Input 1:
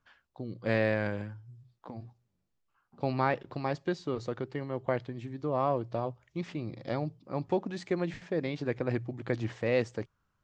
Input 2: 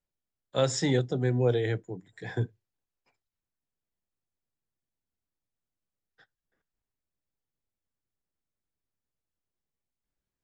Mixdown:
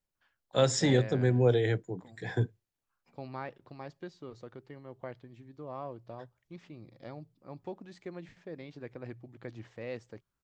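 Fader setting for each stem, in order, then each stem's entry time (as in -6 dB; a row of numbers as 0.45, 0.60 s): -12.0, +0.5 dB; 0.15, 0.00 s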